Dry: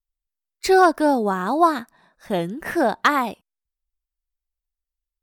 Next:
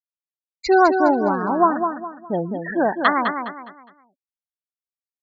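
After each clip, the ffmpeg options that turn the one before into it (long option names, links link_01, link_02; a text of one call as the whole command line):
ffmpeg -i in.wav -filter_complex "[0:a]afftfilt=real='re*gte(hypot(re,im),0.0891)':imag='im*gte(hypot(re,im),0.0891)':win_size=1024:overlap=0.75,asplit=2[link_01][link_02];[link_02]aecho=0:1:206|412|618|824:0.473|0.156|0.0515|0.017[link_03];[link_01][link_03]amix=inputs=2:normalize=0" out.wav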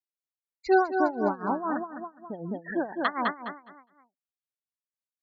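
ffmpeg -i in.wav -af "tremolo=f=4:d=0.87,volume=-4.5dB" out.wav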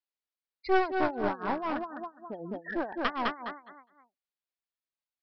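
ffmpeg -i in.wav -af "equalizer=frequency=140:width_type=o:width=1.3:gain=-9.5,aresample=11025,aeval=exprs='clip(val(0),-1,0.0251)':channel_layout=same,aresample=44100" out.wav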